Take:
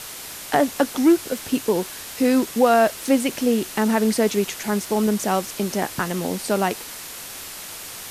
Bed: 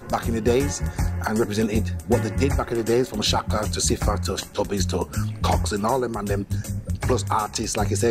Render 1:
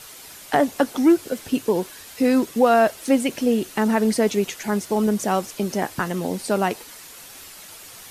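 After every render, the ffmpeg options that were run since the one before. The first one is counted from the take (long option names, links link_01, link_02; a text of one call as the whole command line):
ffmpeg -i in.wav -af "afftdn=noise_reduction=8:noise_floor=-36" out.wav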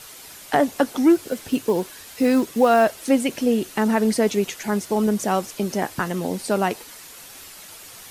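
ffmpeg -i in.wav -filter_complex "[0:a]asettb=1/sr,asplit=3[link_01][link_02][link_03];[link_01]atrim=end=1.154[link_04];[link_02]atrim=start=1.15:end=2.85,asetpts=PTS-STARTPTS,afade=type=in:duration=0.004:curve=qsin,afade=type=out:start_time=1.696:duration=0.004:curve=qsin,acrusher=bits=8:mode=log:mix=0:aa=0.000001[link_05];[link_03]atrim=start=2.846[link_06];[link_04][link_05]acrossfade=duration=0.004:curve1=hsin:curve2=qsin[link_07];[link_07][link_06]acrossfade=duration=0.004:curve1=qsin:curve2=hsin" out.wav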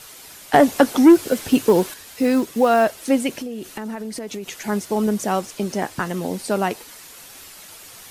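ffmpeg -i in.wav -filter_complex "[0:a]asettb=1/sr,asplit=3[link_01][link_02][link_03];[link_01]atrim=end=0.544[link_04];[link_02]atrim=start=0.54:end=1.94,asetpts=PTS-STARTPTS,afade=type=in:duration=0.004:curve=qsin,afade=type=out:start_time=1.396:duration=0.004:curve=qsin,acontrast=64[link_05];[link_03]atrim=start=1.936[link_06];[link_04][link_05]acrossfade=duration=0.004:curve1=hsin:curve2=qsin[link_07];[link_07][link_06]acrossfade=duration=0.004:curve1=qsin:curve2=hsin,asettb=1/sr,asplit=3[link_08][link_09][link_10];[link_08]atrim=end=3.374[link_11];[link_09]atrim=start=3.37:end=4.55,asetpts=PTS-STARTPTS,afade=type=in:duration=0.004:curve=qsin,afade=type=out:start_time=1.176:duration=0.004:curve=qsin,acompressor=threshold=-26dB:ratio=16:attack=3.2:release=140:knee=1:detection=peak[link_12];[link_10]atrim=start=4.546[link_13];[link_11][link_12]acrossfade=duration=0.004:curve1=hsin:curve2=qsin[link_14];[link_14][link_13]acrossfade=duration=0.004:curve1=qsin:curve2=hsin,asettb=1/sr,asplit=3[link_15][link_16][link_17];[link_15]atrim=end=5.404[link_18];[link_16]atrim=start=5.4:end=6.09,asetpts=PTS-STARTPTS,afade=type=in:duration=0.004:curve=qsin,afade=type=out:start_time=0.686:duration=0.004:curve=qsin,equalizer=frequency=12000:width=8:gain=-14[link_19];[link_17]atrim=start=6.086[link_20];[link_18][link_19]acrossfade=duration=0.004:curve1=hsin:curve2=qsin[link_21];[link_21][link_20]acrossfade=duration=0.004:curve1=qsin:curve2=hsin" out.wav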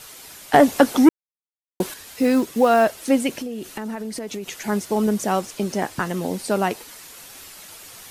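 ffmpeg -i in.wav -filter_complex "[0:a]asplit=3[link_01][link_02][link_03];[link_01]atrim=end=1.09,asetpts=PTS-STARTPTS,afade=type=out:start_time=1.086:duration=0.004:curve=hsin[link_04];[link_02]atrim=start=1.09:end=1.8,asetpts=PTS-STARTPTS,volume=0[link_05];[link_03]atrim=start=1.8,asetpts=PTS-STARTPTS,afade=type=in:duration=0.004:curve=hsin[link_06];[link_04][link_05][link_06]concat=n=3:v=0:a=1" out.wav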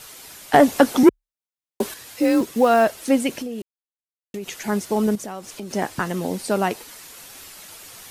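ffmpeg -i in.wav -filter_complex "[0:a]asettb=1/sr,asplit=3[link_01][link_02][link_03];[link_01]atrim=end=1.034[link_04];[link_02]atrim=start=1.03:end=2.41,asetpts=PTS-STARTPTS,afade=type=in:duration=0.004:curve=qsin,afade=type=out:start_time=1.376:duration=0.004:curve=qsin,afreqshift=34[link_05];[link_03]atrim=start=2.406[link_06];[link_04][link_05]acrossfade=duration=0.004:curve1=hsin:curve2=qsin[link_07];[link_07][link_06]acrossfade=duration=0.004:curve1=qsin:curve2=hsin,asettb=1/sr,asplit=3[link_08][link_09][link_10];[link_08]atrim=end=5.154[link_11];[link_09]atrim=start=5.15:end=5.71,asetpts=PTS-STARTPTS,afade=type=in:duration=0.004:curve=qsin,afade=type=out:start_time=0.556:duration=0.004:curve=qsin,acompressor=threshold=-32dB:ratio=3:attack=3.2:release=140:knee=1:detection=peak[link_12];[link_10]atrim=start=5.706[link_13];[link_11][link_12]acrossfade=duration=0.004:curve1=hsin:curve2=qsin[link_14];[link_14][link_13]acrossfade=duration=0.004:curve1=qsin:curve2=hsin,asplit=3[link_15][link_16][link_17];[link_15]atrim=end=3.62,asetpts=PTS-STARTPTS,afade=type=out:start_time=3.616:duration=0.004:curve=hsin[link_18];[link_16]atrim=start=3.62:end=4.34,asetpts=PTS-STARTPTS,volume=0[link_19];[link_17]atrim=start=4.34,asetpts=PTS-STARTPTS,afade=type=in:duration=0.004:curve=hsin[link_20];[link_18][link_19][link_20]concat=n=3:v=0:a=1" out.wav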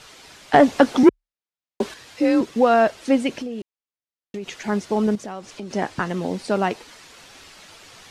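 ffmpeg -i in.wav -af "lowpass=5300" out.wav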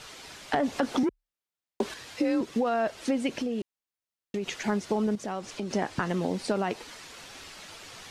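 ffmpeg -i in.wav -af "alimiter=limit=-12dB:level=0:latency=1:release=27,acompressor=threshold=-24dB:ratio=5" out.wav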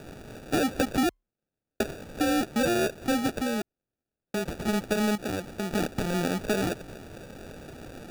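ffmpeg -i in.wav -af "acrusher=samples=42:mix=1:aa=0.000001,aeval=exprs='0.188*(cos(1*acos(clip(val(0)/0.188,-1,1)))-cos(1*PI/2))+0.0133*(cos(5*acos(clip(val(0)/0.188,-1,1)))-cos(5*PI/2))':channel_layout=same" out.wav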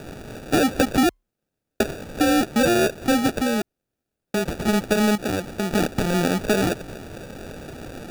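ffmpeg -i in.wav -af "volume=6.5dB" out.wav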